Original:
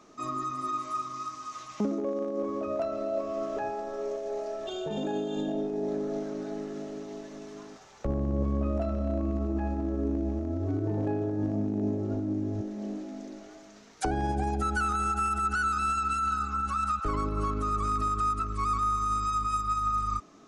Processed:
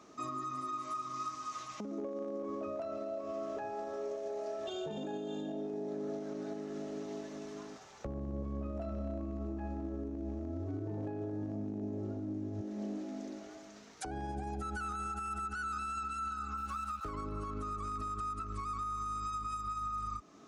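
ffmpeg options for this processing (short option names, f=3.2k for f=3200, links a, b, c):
-filter_complex "[0:a]asettb=1/sr,asplit=3[a][b][c];[a]atrim=end=16.574[d];[b]atrim=start=16.57:end=17.1,asetpts=PTS-STARTPTS,afade=t=in:d=0.004:c=qsin,afade=t=out:st=0.526:d=0.004:c=qsin,aeval=exprs='sgn(val(0))*max(abs(val(0))-0.00376,0)':c=same[e];[c]atrim=start=17.096[f];[d][e]acrossfade=d=0.004:c1=hsin:c2=qsin[g];[g][f]acrossfade=d=0.004:c1=qsin:c2=hsin,highpass=46,acompressor=threshold=-30dB:ratio=6,alimiter=level_in=5.5dB:limit=-24dB:level=0:latency=1:release=303,volume=-5.5dB,volume=-1.5dB"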